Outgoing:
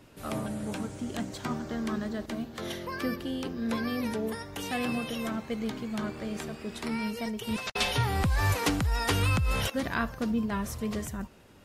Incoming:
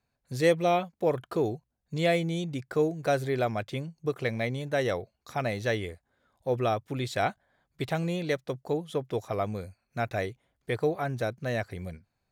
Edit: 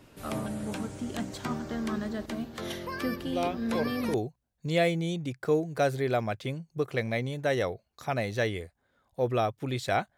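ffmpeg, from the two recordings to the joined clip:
ffmpeg -i cue0.wav -i cue1.wav -filter_complex "[1:a]asplit=2[link_01][link_02];[0:a]apad=whole_dur=10.17,atrim=end=10.17,atrim=end=4.142[link_03];[link_02]atrim=start=1.418:end=7.45[link_04];[link_01]atrim=start=0.54:end=1.42,asetpts=PTS-STARTPTS,volume=-6.5dB,afade=type=in:duration=0.004:curve=hsin,afade=type=out:start_time=0.876:duration=0.004:curve=hsin,adelay=3260[link_05];[link_03][link_04]acrossfade=duration=0.004:curve1=hsin:curve2=hsin[link_06];[link_06][link_05]amix=inputs=2:normalize=0" out.wav

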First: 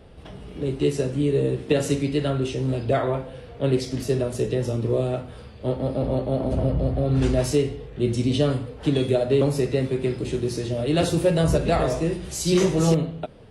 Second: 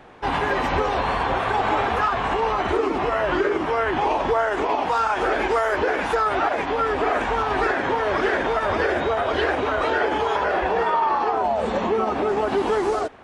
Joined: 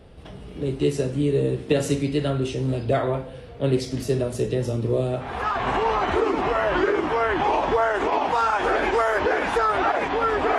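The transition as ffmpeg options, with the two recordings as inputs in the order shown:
ffmpeg -i cue0.wav -i cue1.wav -filter_complex "[0:a]apad=whole_dur=10.58,atrim=end=10.58,atrim=end=5.89,asetpts=PTS-STARTPTS[link_01];[1:a]atrim=start=1.72:end=7.15,asetpts=PTS-STARTPTS[link_02];[link_01][link_02]acrossfade=duration=0.74:curve1=qsin:curve2=qsin" out.wav

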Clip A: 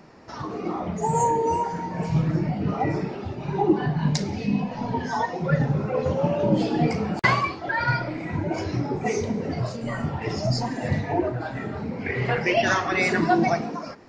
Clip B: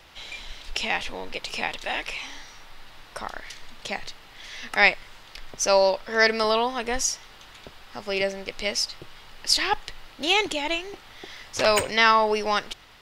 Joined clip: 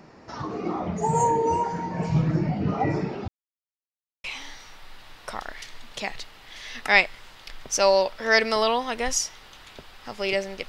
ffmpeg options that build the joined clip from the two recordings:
ffmpeg -i cue0.wav -i cue1.wav -filter_complex "[0:a]apad=whole_dur=10.68,atrim=end=10.68,asplit=2[link_01][link_02];[link_01]atrim=end=3.28,asetpts=PTS-STARTPTS,afade=type=out:start_time=3.276:duration=0.004:curve=hsin[link_03];[link_02]atrim=start=3.28:end=4.24,asetpts=PTS-STARTPTS,volume=0[link_04];[1:a]atrim=start=2.12:end=8.56,asetpts=PTS-STARTPTS,afade=type=in:duration=0.004:curve=hsin[link_05];[link_03][link_04][link_05]concat=n=3:v=0:a=1" out.wav

